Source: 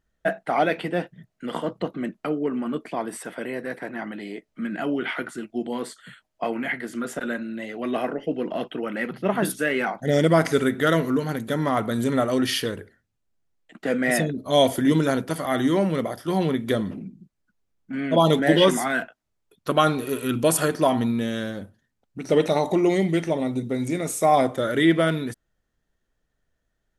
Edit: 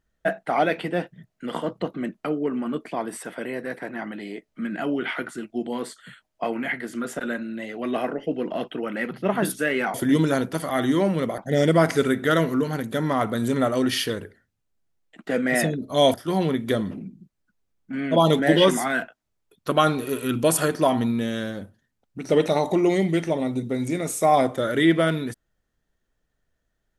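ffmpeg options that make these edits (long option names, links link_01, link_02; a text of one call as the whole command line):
ffmpeg -i in.wav -filter_complex "[0:a]asplit=4[link_01][link_02][link_03][link_04];[link_01]atrim=end=9.942[link_05];[link_02]atrim=start=14.698:end=16.142[link_06];[link_03]atrim=start=9.938:end=14.702[link_07];[link_04]atrim=start=16.138[link_08];[link_05][link_06]acrossfade=duration=0.004:curve1=hsin:curve2=hsin[link_09];[link_09][link_07]acrossfade=duration=0.004:curve1=hsin:curve2=hsin[link_10];[link_10][link_08]acrossfade=duration=0.004:curve1=hsin:curve2=hsin" out.wav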